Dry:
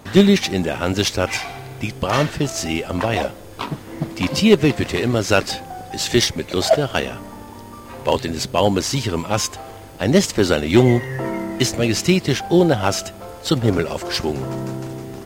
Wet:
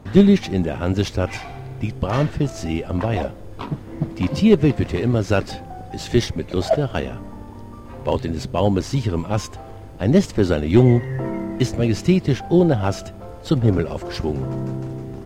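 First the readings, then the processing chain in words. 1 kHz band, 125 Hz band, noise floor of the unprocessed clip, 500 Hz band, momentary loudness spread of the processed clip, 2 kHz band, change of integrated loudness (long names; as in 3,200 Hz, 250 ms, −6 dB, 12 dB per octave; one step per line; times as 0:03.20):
−4.5 dB, +2.5 dB, −38 dBFS, −2.0 dB, 18 LU, −7.5 dB, −1.0 dB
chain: spectral tilt −2.5 dB per octave
level −5 dB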